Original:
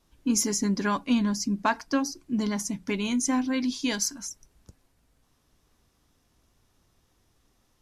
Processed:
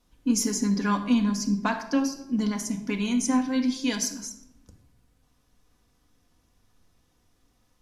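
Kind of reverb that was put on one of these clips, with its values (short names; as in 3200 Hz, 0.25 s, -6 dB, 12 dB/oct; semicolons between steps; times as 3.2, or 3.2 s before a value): shoebox room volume 2500 m³, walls furnished, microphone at 1.9 m; gain -2 dB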